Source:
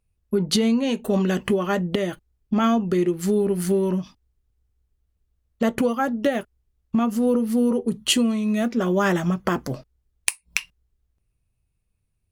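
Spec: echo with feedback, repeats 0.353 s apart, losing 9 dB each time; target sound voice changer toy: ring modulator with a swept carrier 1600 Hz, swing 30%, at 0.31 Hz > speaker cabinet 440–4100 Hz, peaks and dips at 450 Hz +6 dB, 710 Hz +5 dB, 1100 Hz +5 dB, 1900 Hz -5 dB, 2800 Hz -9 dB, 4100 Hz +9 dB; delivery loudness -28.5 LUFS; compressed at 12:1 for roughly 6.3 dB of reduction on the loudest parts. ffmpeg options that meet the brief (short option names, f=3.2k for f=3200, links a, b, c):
-af "acompressor=threshold=-24dB:ratio=12,aecho=1:1:353|706|1059|1412:0.355|0.124|0.0435|0.0152,aeval=exprs='val(0)*sin(2*PI*1600*n/s+1600*0.3/0.31*sin(2*PI*0.31*n/s))':c=same,highpass=440,equalizer=f=450:t=q:w=4:g=6,equalizer=f=710:t=q:w=4:g=5,equalizer=f=1.1k:t=q:w=4:g=5,equalizer=f=1.9k:t=q:w=4:g=-5,equalizer=f=2.8k:t=q:w=4:g=-9,equalizer=f=4.1k:t=q:w=4:g=9,lowpass=f=4.1k:w=0.5412,lowpass=f=4.1k:w=1.3066,volume=2dB"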